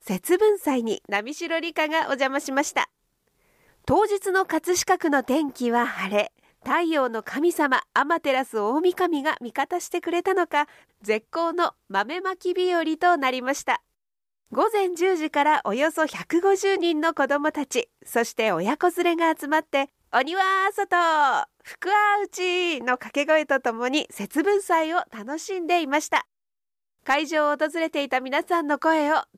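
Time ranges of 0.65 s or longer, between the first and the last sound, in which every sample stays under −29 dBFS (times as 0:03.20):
0:02.84–0:03.88
0:13.76–0:14.53
0:26.21–0:27.06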